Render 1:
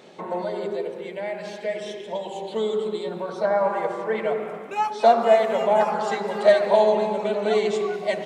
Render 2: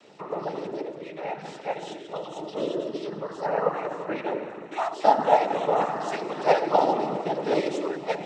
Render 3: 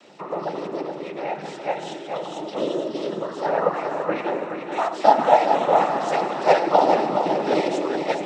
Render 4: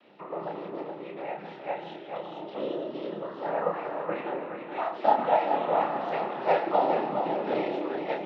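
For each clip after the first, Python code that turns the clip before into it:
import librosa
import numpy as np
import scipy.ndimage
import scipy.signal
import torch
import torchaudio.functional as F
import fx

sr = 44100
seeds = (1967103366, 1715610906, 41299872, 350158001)

y1 = fx.noise_vocoder(x, sr, seeds[0], bands=12)
y1 = y1 * librosa.db_to_amplitude(-3.5)
y2 = scipy.signal.sosfilt(scipy.signal.butter(2, 140.0, 'highpass', fs=sr, output='sos'), y1)
y2 = fx.notch(y2, sr, hz=440.0, q=13.0)
y2 = fx.echo_feedback(y2, sr, ms=422, feedback_pct=41, wet_db=-7.0)
y2 = y2 * librosa.db_to_amplitude(4.0)
y3 = scipy.signal.sosfilt(scipy.signal.butter(4, 3500.0, 'lowpass', fs=sr, output='sos'), y2)
y3 = fx.doubler(y3, sr, ms=30.0, db=-4.5)
y3 = y3 * librosa.db_to_amplitude(-8.5)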